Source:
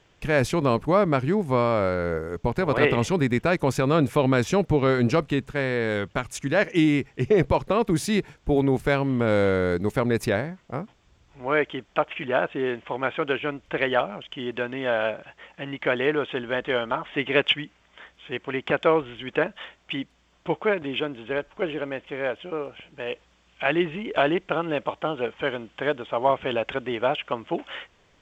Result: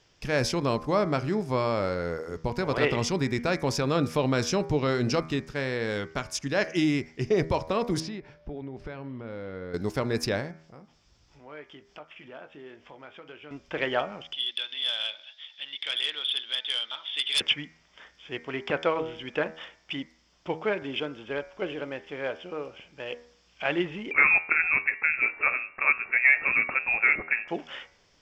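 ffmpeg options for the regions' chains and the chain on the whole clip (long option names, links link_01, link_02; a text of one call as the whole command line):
ffmpeg -i in.wav -filter_complex "[0:a]asettb=1/sr,asplit=3[link_01][link_02][link_03];[link_01]atrim=end=8.004[link_04];[link_02]atrim=start=8:end=9.74,asetpts=PTS-STARTPTS,afade=type=in:duration=0.004:curve=qsin,afade=type=out:start_time=1.736:duration=0.004:curve=qsin,lowpass=2700,aeval=exprs='val(0)+0.00251*sin(2*PI*590*n/s)':channel_layout=same,acompressor=threshold=-28dB:ratio=16:attack=3.2:release=140:knee=1:detection=peak[link_05];[link_03]atrim=start=9.736[link_06];[link_04][link_05]acrossfade=duration=0.004:curve1=hsin:curve2=qsin[link_07];[link_07][link_06]acrossfade=duration=0.004:curve1=qsin:curve2=hsin,asettb=1/sr,asplit=3[link_08][link_09][link_10];[link_08]atrim=end=10.514[link_11];[link_09]atrim=start=10.51:end=13.51,asetpts=PTS-STARTPTS,afade=type=in:duration=0.004:curve=qsin,afade=type=out:start_time=2.996:duration=0.004:curve=qsin,acompressor=threshold=-50dB:ratio=2:attack=3.2:release=140:knee=1:detection=peak,asplit=2[link_12][link_13];[link_13]adelay=20,volume=-11.5dB[link_14];[link_12][link_14]amix=inputs=2:normalize=0,atrim=end_sample=132300[link_15];[link_10]atrim=start=13.506[link_16];[link_11][link_15]acrossfade=duration=0.004:curve1=hsin:curve2=qsin[link_17];[link_17][link_16]acrossfade=duration=0.004:curve1=qsin:curve2=hsin,asettb=1/sr,asplit=3[link_18][link_19][link_20];[link_18]atrim=end=14.334[link_21];[link_19]atrim=start=14.33:end=17.41,asetpts=PTS-STARTPTS,afade=type=in:duration=0.004:curve=qsin,afade=type=out:start_time=3.076:duration=0.004:curve=qsin,bandpass=frequency=3500:width_type=q:width=16,aeval=exprs='0.126*sin(PI/2*7.94*val(0)/0.126)':channel_layout=same[link_22];[link_20]atrim=start=17.406[link_23];[link_21][link_22]acrossfade=duration=0.004:curve1=hsin:curve2=qsin[link_24];[link_24][link_23]acrossfade=duration=0.004:curve1=qsin:curve2=hsin,asettb=1/sr,asplit=3[link_25][link_26][link_27];[link_25]atrim=end=24.114[link_28];[link_26]atrim=start=24.11:end=27.48,asetpts=PTS-STARTPTS,afade=type=in:duration=0.004:curve=qsin,afade=type=out:start_time=3.366:duration=0.004:curve=qsin,acontrast=45,lowpass=frequency=2400:width_type=q:width=0.5098,lowpass=frequency=2400:width_type=q:width=0.6013,lowpass=frequency=2400:width_type=q:width=0.9,lowpass=frequency=2400:width_type=q:width=2.563,afreqshift=-2800[link_29];[link_27]atrim=start=27.476[link_30];[link_28][link_29]acrossfade=duration=0.004:curve1=hsin:curve2=qsin[link_31];[link_31][link_30]acrossfade=duration=0.004:curve1=qsin:curve2=hsin,equalizer=frequency=5200:width=2.5:gain=14.5,bandreject=frequency=80.11:width_type=h:width=4,bandreject=frequency=160.22:width_type=h:width=4,bandreject=frequency=240.33:width_type=h:width=4,bandreject=frequency=320.44:width_type=h:width=4,bandreject=frequency=400.55:width_type=h:width=4,bandreject=frequency=480.66:width_type=h:width=4,bandreject=frequency=560.77:width_type=h:width=4,bandreject=frequency=640.88:width_type=h:width=4,bandreject=frequency=720.99:width_type=h:width=4,bandreject=frequency=801.1:width_type=h:width=4,bandreject=frequency=881.21:width_type=h:width=4,bandreject=frequency=961.32:width_type=h:width=4,bandreject=frequency=1041.43:width_type=h:width=4,bandreject=frequency=1121.54:width_type=h:width=4,bandreject=frequency=1201.65:width_type=h:width=4,bandreject=frequency=1281.76:width_type=h:width=4,bandreject=frequency=1361.87:width_type=h:width=4,bandreject=frequency=1441.98:width_type=h:width=4,bandreject=frequency=1522.09:width_type=h:width=4,bandreject=frequency=1602.2:width_type=h:width=4,bandreject=frequency=1682.31:width_type=h:width=4,bandreject=frequency=1762.42:width_type=h:width=4,bandreject=frequency=1842.53:width_type=h:width=4,bandreject=frequency=1922.64:width_type=h:width=4,bandreject=frequency=2002.75:width_type=h:width=4,bandreject=frequency=2082.86:width_type=h:width=4,bandreject=frequency=2162.97:width_type=h:width=4,bandreject=frequency=2243.08:width_type=h:width=4,bandreject=frequency=2323.19:width_type=h:width=4,bandreject=frequency=2403.3:width_type=h:width=4,volume=-4.5dB" out.wav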